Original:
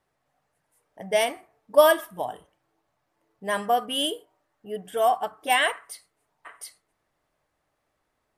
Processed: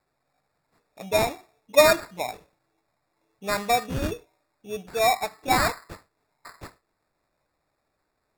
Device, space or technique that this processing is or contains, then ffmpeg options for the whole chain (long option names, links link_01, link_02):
crushed at another speed: -af "asetrate=35280,aresample=44100,acrusher=samples=18:mix=1:aa=0.000001,asetrate=55125,aresample=44100"